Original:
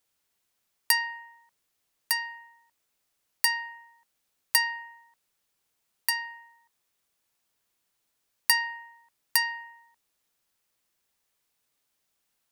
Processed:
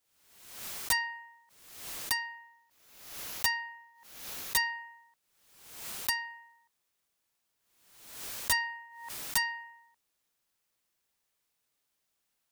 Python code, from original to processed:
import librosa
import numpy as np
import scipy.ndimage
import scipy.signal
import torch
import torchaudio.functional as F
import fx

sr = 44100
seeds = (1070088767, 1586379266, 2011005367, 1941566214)

y = fx.peak_eq(x, sr, hz=8400.0, db=-7.0, octaves=0.22, at=(2.23, 4.65))
y = (np.mod(10.0 ** (16.5 / 20.0) * y + 1.0, 2.0) - 1.0) / 10.0 ** (16.5 / 20.0)
y = fx.pre_swell(y, sr, db_per_s=61.0)
y = y * librosa.db_to_amplitude(-3.0)